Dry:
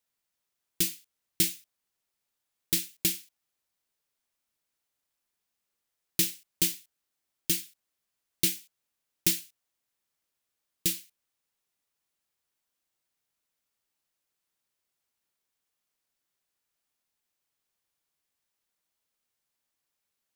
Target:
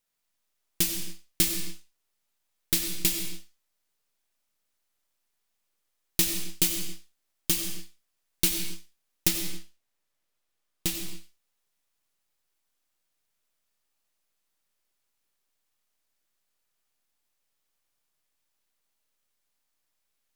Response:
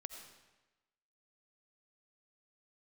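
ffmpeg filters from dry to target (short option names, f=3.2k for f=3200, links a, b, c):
-filter_complex "[0:a]aeval=exprs='if(lt(val(0),0),0.447*val(0),val(0))':c=same,asettb=1/sr,asplit=3[a][b][c];[a]atrim=end=9.284[d];[b]atrim=start=9.28:end=10.95,asetpts=PTS-STARTPTS,afade=t=in:d=0.004:c=qsin,afade=t=out:st=1.666:d=0.004:c=qsin,highshelf=f=5.2k:g=-5[e];[c]atrim=start=10.946[f];[d][e]acrossfade=d=0.004:c1=hsin:c2=qsin[g];[g][f]acrossfade=d=0.004:c1=qsin:c2=hsin[h];[1:a]atrim=start_sample=2205,afade=t=out:st=0.33:d=0.01,atrim=end_sample=14994,asetrate=41454,aresample=44100[i];[h][i]afir=irnorm=-1:irlink=0,volume=9dB"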